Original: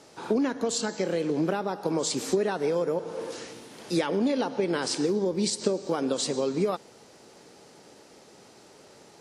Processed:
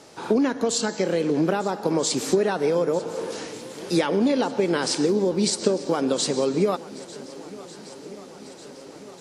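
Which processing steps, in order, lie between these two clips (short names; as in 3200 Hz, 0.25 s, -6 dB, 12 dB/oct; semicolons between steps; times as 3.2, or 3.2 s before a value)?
swung echo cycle 1.494 s, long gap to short 1.5:1, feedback 58%, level -19.5 dB; gain +4.5 dB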